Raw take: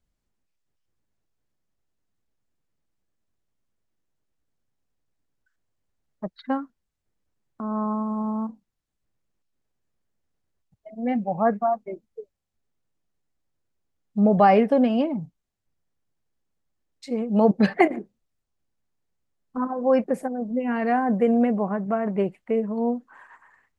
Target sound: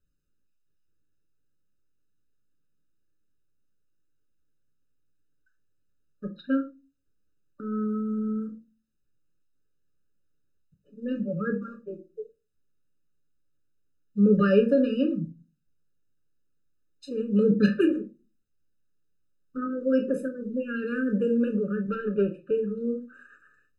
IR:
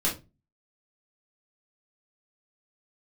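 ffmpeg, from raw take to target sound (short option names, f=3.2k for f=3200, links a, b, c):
-filter_complex "[0:a]asettb=1/sr,asplit=3[a][b][c];[a]atrim=end=21.884[d];[b]atrim=start=21.88:end=22.51,asetpts=PTS-STARTPTS,afade=t=in:d=0.004:c=qsin,afade=t=out:st=0.626:d=0.004:c=qsin,asplit=2[e][f];[f]highpass=f=720:p=1,volume=13dB,asoftclip=type=tanh:threshold=-12dB[g];[e][g]amix=inputs=2:normalize=0,lowpass=f=1.5k:p=1,volume=-6dB[h];[c]atrim=start=22.506[i];[d][h]acrossfade=d=0.004:c1=hsin:c2=qsin[j];[j][i]acrossfade=d=0.004:c1=qsin:c2=hsin,asplit=2[k][l];[1:a]atrim=start_sample=2205,lowshelf=f=100:g=-9[m];[l][m]afir=irnorm=-1:irlink=0,volume=-11dB[n];[k][n]amix=inputs=2:normalize=0,afftfilt=real='re*eq(mod(floor(b*sr/1024/600),2),0)':imag='im*eq(mod(floor(b*sr/1024/600),2),0)':win_size=1024:overlap=0.75,volume=-4dB"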